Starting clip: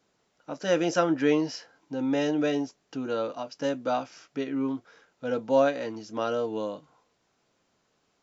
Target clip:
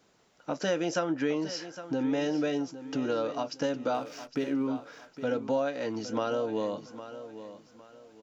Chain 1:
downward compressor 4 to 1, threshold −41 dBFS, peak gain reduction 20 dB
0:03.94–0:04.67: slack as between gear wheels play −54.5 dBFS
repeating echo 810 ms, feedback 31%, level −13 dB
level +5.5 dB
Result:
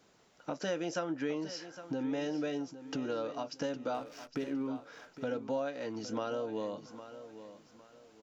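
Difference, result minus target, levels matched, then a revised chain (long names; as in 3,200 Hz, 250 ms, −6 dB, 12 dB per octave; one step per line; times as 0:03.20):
downward compressor: peak gain reduction +6 dB
downward compressor 4 to 1, threshold −33 dBFS, peak gain reduction 14 dB
0:03.94–0:04.67: slack as between gear wheels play −54.5 dBFS
repeating echo 810 ms, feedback 31%, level −13 dB
level +5.5 dB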